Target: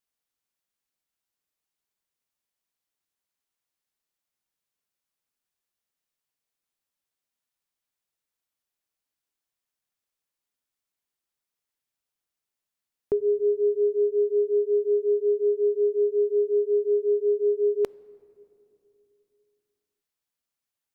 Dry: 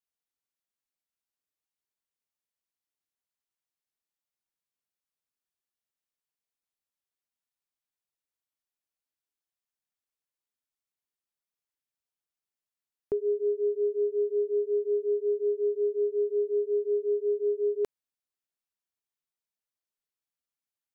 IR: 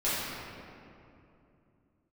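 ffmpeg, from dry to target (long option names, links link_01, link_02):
-filter_complex "[0:a]asplit=2[link_01][link_02];[1:a]atrim=start_sample=2205,asetrate=41454,aresample=44100,lowshelf=frequency=190:gain=7.5[link_03];[link_02][link_03]afir=irnorm=-1:irlink=0,volume=-33dB[link_04];[link_01][link_04]amix=inputs=2:normalize=0,volume=4.5dB"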